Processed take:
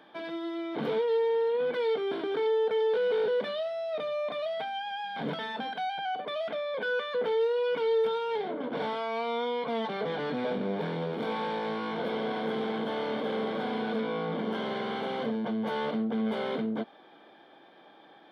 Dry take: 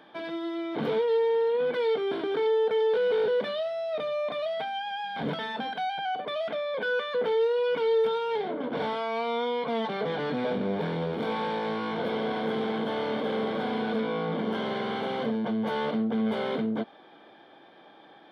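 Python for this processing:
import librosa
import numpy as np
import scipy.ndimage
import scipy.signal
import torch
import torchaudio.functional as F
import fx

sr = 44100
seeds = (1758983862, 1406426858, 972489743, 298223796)

y = fx.peak_eq(x, sr, hz=80.0, db=-12.5, octaves=0.68)
y = y * librosa.db_to_amplitude(-2.0)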